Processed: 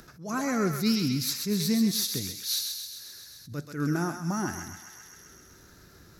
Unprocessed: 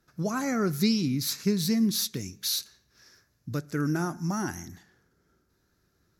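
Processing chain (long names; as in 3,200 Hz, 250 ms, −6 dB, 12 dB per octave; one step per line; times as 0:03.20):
feedback echo with a high-pass in the loop 131 ms, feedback 61%, high-pass 850 Hz, level −5 dB
upward compression, threshold −38 dBFS
level that may rise only so fast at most 140 dB per second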